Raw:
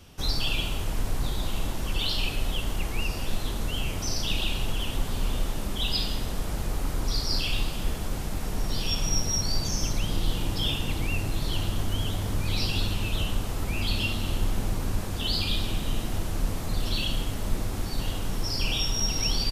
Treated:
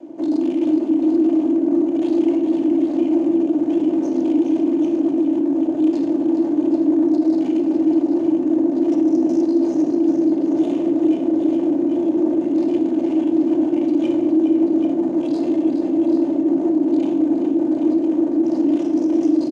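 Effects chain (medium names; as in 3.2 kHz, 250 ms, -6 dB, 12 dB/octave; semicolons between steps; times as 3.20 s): median filter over 25 samples; treble shelf 2.3 kHz -11 dB; in parallel at -1 dB: compressor with a negative ratio -27 dBFS; on the sum: frequency shift -49 Hz; saturation -27.5 dBFS, distortion -8 dB; ring modulator 300 Hz; cabinet simulation 240–9400 Hz, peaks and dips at 330 Hz +9 dB, 690 Hz +9 dB, 1.3 kHz -9 dB, 6.6 kHz +9 dB; multi-tap echo 416/786 ms -8/-7.5 dB; simulated room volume 2100 m³, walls furnished, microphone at 2.6 m; loudness maximiser +11.5 dB; trim -7.5 dB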